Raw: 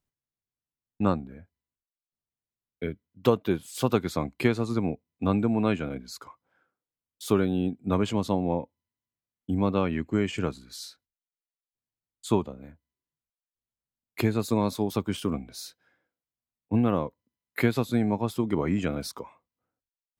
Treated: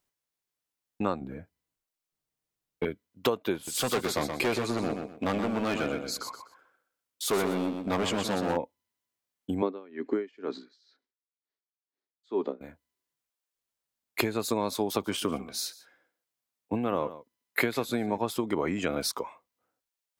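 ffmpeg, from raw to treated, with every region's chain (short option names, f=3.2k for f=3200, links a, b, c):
-filter_complex "[0:a]asettb=1/sr,asplit=3[a][b][c];[a]atrim=end=1.214[d];[b]atrim=start=1.21:end=2.85,asetpts=PTS-STARTPTS,afade=t=in:d=0.004:c=qsin,afade=t=out:st=1.636:d=0.004:c=qsin,lowshelf=f=300:g=11,aecho=1:1:6.4:0.34,atrim=end_sample=72324,aeval=exprs='(tanh(10*val(0)+0.35)-tanh(0.35))/10':c=same[e];[c]atrim=start=2.846[f];[d][e]acrossfade=d=0.004:c1=hsin:c2=qsin[g];[g][f]acrossfade=d=0.004:c1=qsin:c2=hsin,asettb=1/sr,asplit=3[h][i][j];[h]atrim=end=3.554[k];[i]atrim=start=3.55:end=8.57,asetpts=PTS-STARTPTS,afade=t=in:d=0.004:c=qsin,afade=t=out:st=5.016:d=0.004:c=qsin,asoftclip=type=hard:threshold=-24.5dB,aecho=1:1:124|248|372:0.447|0.116|0.0302,atrim=end_sample=221382[l];[j]atrim=start=8.566[m];[k][l]acrossfade=d=0.004:c1=hsin:c2=qsin[n];[n][m]acrossfade=d=0.004:c1=qsin:c2=hsin,asettb=1/sr,asplit=3[o][p][q];[o]atrim=end=9.624[r];[p]atrim=start=9.62:end=12.61,asetpts=PTS-STARTPTS,afade=t=in:d=0.004:c=qsin,afade=t=out:st=2.986:d=0.004:c=qsin,highpass=f=170:w=0.5412,highpass=f=170:w=1.3066,equalizer=f=170:t=q:w=4:g=-4,equalizer=f=270:t=q:w=4:g=8,equalizer=f=400:t=q:w=4:g=10,equalizer=f=1.8k:t=q:w=4:g=4,equalizer=f=2.7k:t=q:w=4:g=-6,lowpass=f=5k:w=0.5412,lowpass=f=5k:w=1.3066,aeval=exprs='val(0)*pow(10,-31*(0.5-0.5*cos(2*PI*2.1*n/s))/20)':c=same[s];[q]atrim=start=12.606[t];[r][s]acrossfade=d=0.004:c1=hsin:c2=qsin[u];[u][t]acrossfade=d=0.004:c1=qsin:c2=hsin,asettb=1/sr,asplit=3[v][w][x];[v]atrim=end=14.804[y];[w]atrim=start=14.8:end=18.18,asetpts=PTS-STARTPTS,afade=t=in:d=0.004:c=qsin,afade=t=out:st=3.376:d=0.004:c=qsin,highpass=58,aecho=1:1:144:0.106,atrim=end_sample=149058[z];[x]atrim=start=18.176[aa];[y][z]acrossfade=d=0.004:c1=hsin:c2=qsin[ab];[ab][aa]acrossfade=d=0.004:c1=qsin:c2=hsin,acompressor=threshold=-26dB:ratio=6,bass=f=250:g=-12,treble=f=4k:g=1,volume=6dB"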